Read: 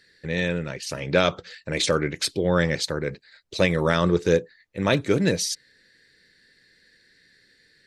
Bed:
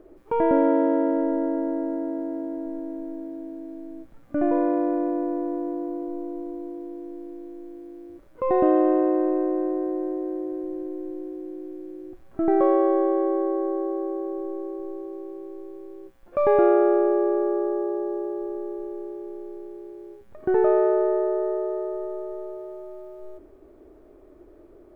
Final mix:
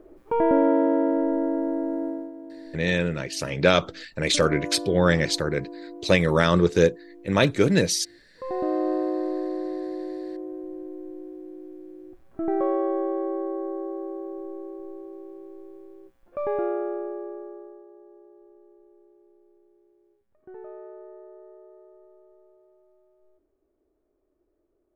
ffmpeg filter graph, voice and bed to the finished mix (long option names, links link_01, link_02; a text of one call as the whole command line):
ffmpeg -i stem1.wav -i stem2.wav -filter_complex "[0:a]adelay=2500,volume=1.5dB[link_01];[1:a]volume=5dB,afade=type=out:start_time=2.06:duration=0.26:silence=0.316228,afade=type=in:start_time=8.44:duration=0.47:silence=0.562341,afade=type=out:start_time=15.74:duration=2.11:silence=0.133352[link_02];[link_01][link_02]amix=inputs=2:normalize=0" out.wav